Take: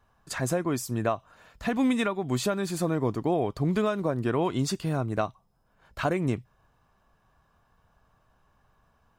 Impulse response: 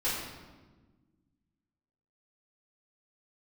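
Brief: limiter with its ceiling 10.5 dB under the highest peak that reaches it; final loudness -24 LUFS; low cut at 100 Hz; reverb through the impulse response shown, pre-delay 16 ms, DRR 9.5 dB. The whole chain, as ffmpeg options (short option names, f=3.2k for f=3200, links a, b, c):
-filter_complex "[0:a]highpass=100,alimiter=limit=-23dB:level=0:latency=1,asplit=2[a][b];[1:a]atrim=start_sample=2205,adelay=16[c];[b][c]afir=irnorm=-1:irlink=0,volume=-17.5dB[d];[a][d]amix=inputs=2:normalize=0,volume=8.5dB"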